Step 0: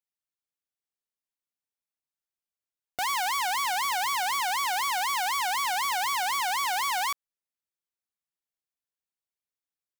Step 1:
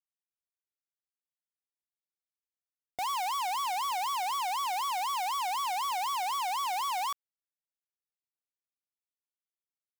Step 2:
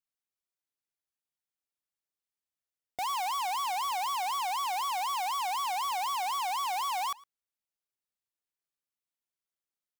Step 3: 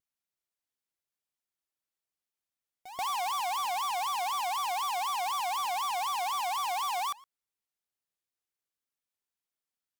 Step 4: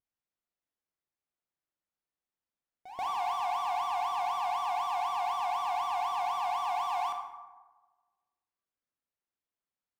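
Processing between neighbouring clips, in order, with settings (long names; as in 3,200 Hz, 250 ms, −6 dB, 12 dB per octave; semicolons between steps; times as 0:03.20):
leveller curve on the samples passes 5; level −7.5 dB
slap from a distant wall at 19 metres, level −22 dB
echo ahead of the sound 130 ms −13.5 dB; pitch vibrato 4 Hz 97 cents
low-pass filter 1,500 Hz 6 dB per octave; convolution reverb RT60 1.3 s, pre-delay 18 ms, DRR 3.5 dB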